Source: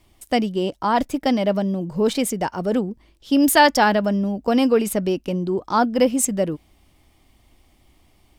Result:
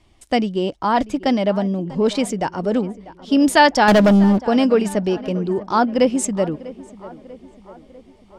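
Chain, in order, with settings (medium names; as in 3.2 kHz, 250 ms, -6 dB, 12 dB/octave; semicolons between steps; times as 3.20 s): Bessel low-pass 6.9 kHz, order 4; 3.88–4.39 s: waveshaping leveller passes 3; on a send: tape echo 645 ms, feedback 60%, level -17 dB, low-pass 2.1 kHz; on the sum: trim +1.5 dB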